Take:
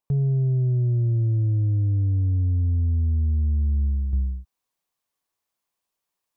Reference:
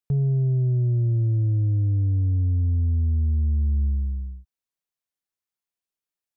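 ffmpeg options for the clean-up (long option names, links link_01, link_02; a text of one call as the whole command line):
ffmpeg -i in.wav -af "agate=range=-21dB:threshold=-76dB,asetnsamples=nb_out_samples=441:pad=0,asendcmd='4.13 volume volume -7dB',volume=0dB" out.wav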